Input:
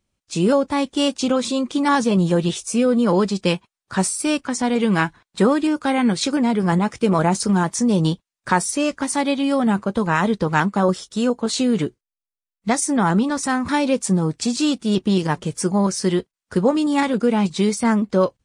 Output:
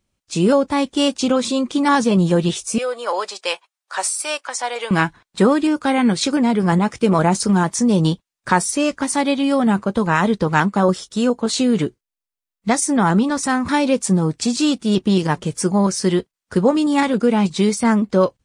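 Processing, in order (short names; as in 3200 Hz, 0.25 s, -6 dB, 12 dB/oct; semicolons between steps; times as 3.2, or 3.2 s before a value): 2.78–4.91 HPF 570 Hz 24 dB/oct; gain +2 dB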